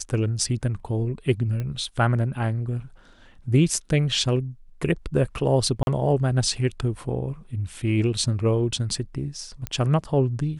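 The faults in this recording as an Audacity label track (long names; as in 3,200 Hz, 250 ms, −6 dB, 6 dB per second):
1.600000	1.600000	click −19 dBFS
5.830000	5.870000	drop-out 41 ms
9.670000	9.670000	click −13 dBFS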